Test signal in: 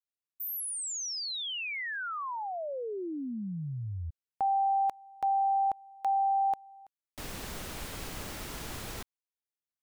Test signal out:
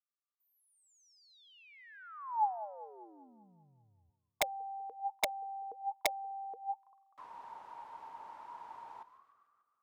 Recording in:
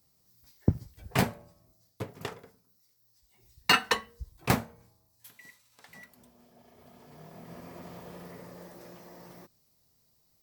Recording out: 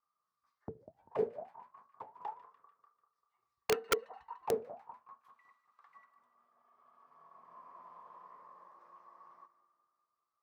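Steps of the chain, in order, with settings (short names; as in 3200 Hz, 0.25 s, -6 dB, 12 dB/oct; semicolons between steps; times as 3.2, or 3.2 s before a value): split-band echo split 1300 Hz, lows 0.196 s, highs 0.147 s, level -14.5 dB; auto-wah 440–1200 Hz, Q 19, down, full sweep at -24 dBFS; wrapped overs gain 32 dB; gain +10.5 dB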